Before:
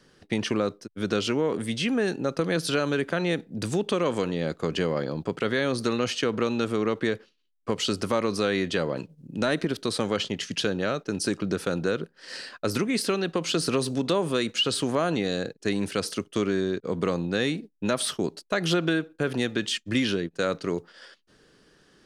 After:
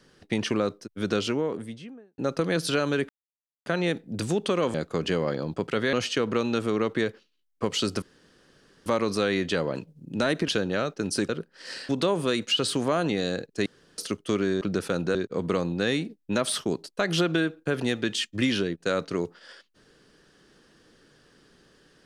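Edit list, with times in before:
1.09–2.18 studio fade out
3.09 insert silence 0.57 s
4.17–4.43 cut
5.62–5.99 cut
8.08 insert room tone 0.84 s
9.7–10.57 cut
11.38–11.92 move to 16.68
12.52–13.96 cut
15.73–16.05 room tone

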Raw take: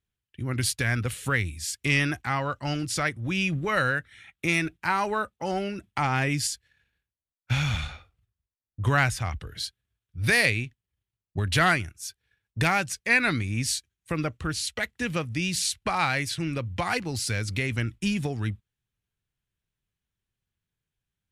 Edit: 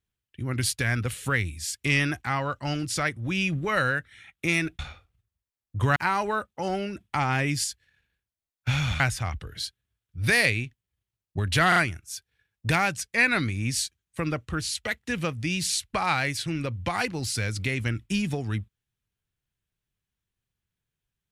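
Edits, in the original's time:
7.83–9 move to 4.79
11.68 stutter 0.04 s, 3 plays

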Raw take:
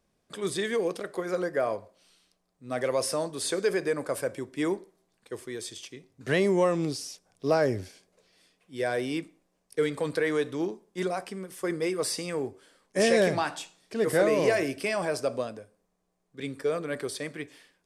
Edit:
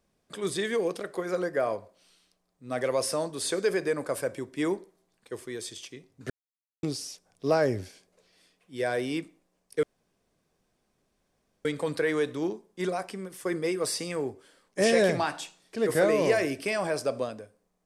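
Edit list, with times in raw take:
6.3–6.83 mute
9.83 insert room tone 1.82 s

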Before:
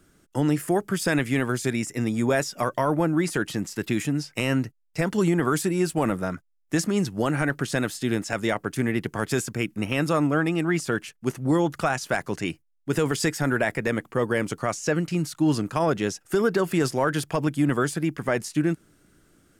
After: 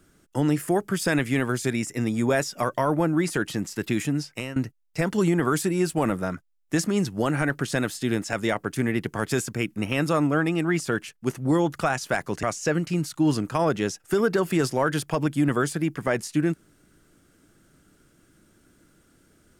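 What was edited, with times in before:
4.22–4.56 fade out, to -17.5 dB
12.43–14.64 cut

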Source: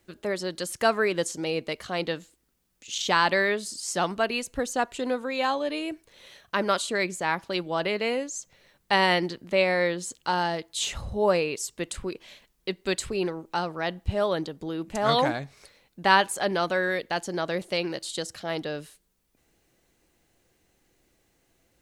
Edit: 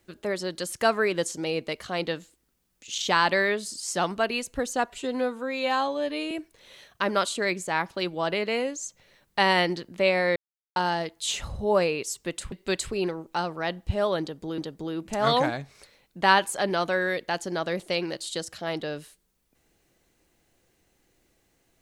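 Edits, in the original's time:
4.9–5.84 stretch 1.5×
9.89–10.29 mute
12.05–12.71 cut
14.4–14.77 loop, 2 plays

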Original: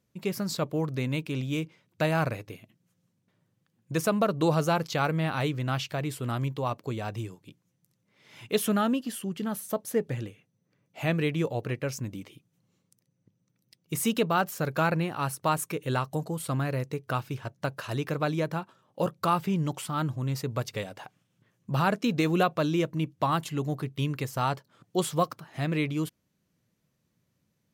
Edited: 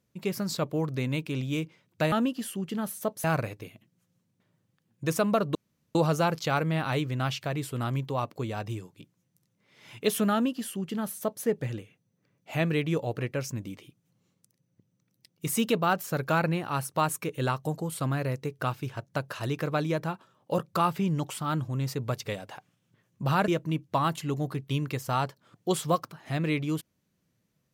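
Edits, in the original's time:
4.43 insert room tone 0.40 s
8.8–9.92 copy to 2.12
21.96–22.76 cut

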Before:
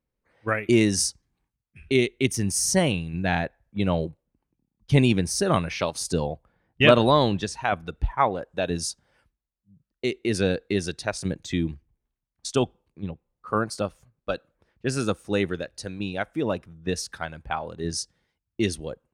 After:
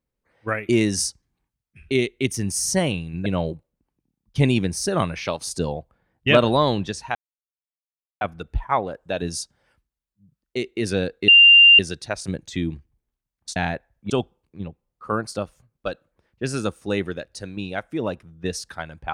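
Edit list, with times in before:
3.26–3.8 move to 12.53
7.69 insert silence 1.06 s
10.76 add tone 2790 Hz -7 dBFS 0.51 s

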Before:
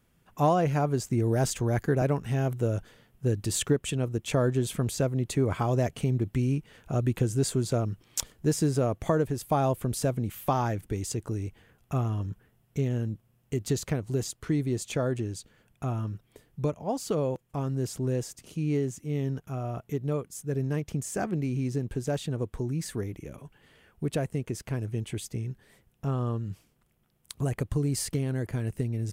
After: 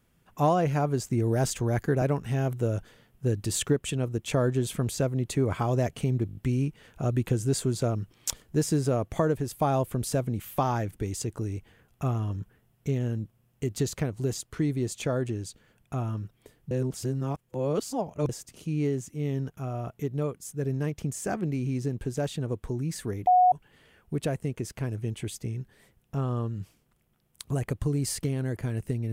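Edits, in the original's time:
6.27 stutter 0.02 s, 6 plays
16.61–18.19 reverse
23.17–23.42 bleep 730 Hz -15.5 dBFS

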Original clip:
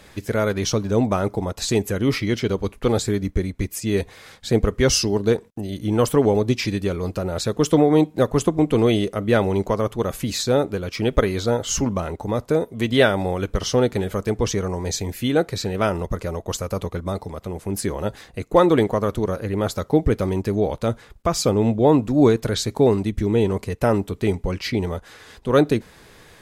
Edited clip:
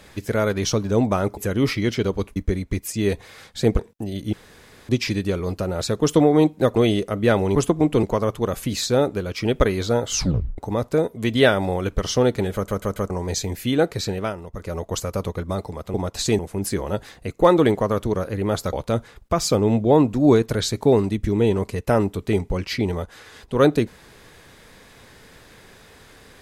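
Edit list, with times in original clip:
1.37–1.82 move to 17.51
2.81–3.24 cut
4.67–5.36 cut
5.9–6.46 room tone
8.33–8.81 move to 9.6
11.7 tape stop 0.45 s
14.11 stutter in place 0.14 s, 4 plays
15.67–16.35 dip -10.5 dB, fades 0.25 s
19.85–20.67 cut

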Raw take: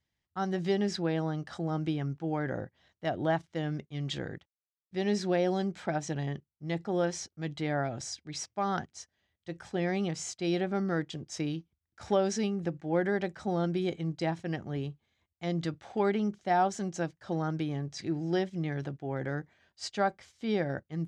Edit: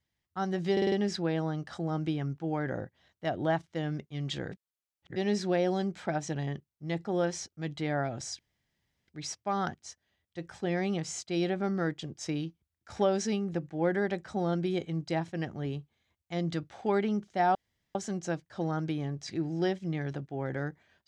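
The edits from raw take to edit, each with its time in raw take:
0.72 stutter 0.05 s, 5 plays
4.32–4.96 reverse
8.19 insert room tone 0.69 s
16.66 insert room tone 0.40 s

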